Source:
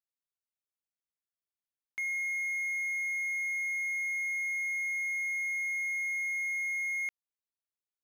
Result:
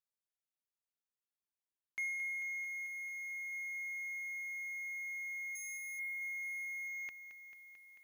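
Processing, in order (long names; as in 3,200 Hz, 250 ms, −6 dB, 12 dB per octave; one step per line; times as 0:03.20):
0:05.55–0:05.99: high shelf with overshoot 5,800 Hz +10 dB, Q 1.5
reverb reduction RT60 1.4 s
feedback echo at a low word length 221 ms, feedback 80%, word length 11 bits, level −11 dB
level −3.5 dB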